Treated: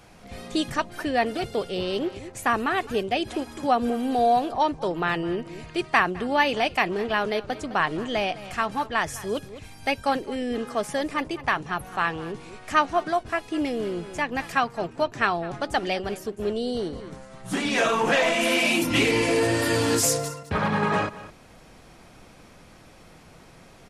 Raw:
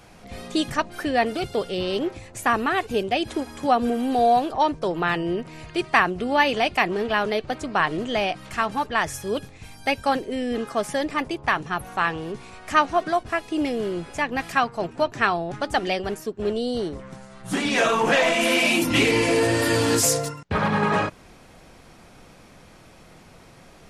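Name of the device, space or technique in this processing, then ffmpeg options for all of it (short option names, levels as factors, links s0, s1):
ducked delay: -filter_complex "[0:a]asplit=3[s0][s1][s2];[s1]adelay=209,volume=0.501[s3];[s2]apad=whole_len=1063020[s4];[s3][s4]sidechaincompress=threshold=0.0224:ratio=8:attack=28:release=602[s5];[s0][s5]amix=inputs=2:normalize=0,volume=0.794"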